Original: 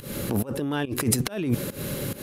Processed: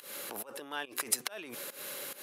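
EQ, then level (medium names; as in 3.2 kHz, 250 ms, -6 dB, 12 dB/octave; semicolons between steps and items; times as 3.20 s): high-pass 760 Hz 12 dB/octave; -5.0 dB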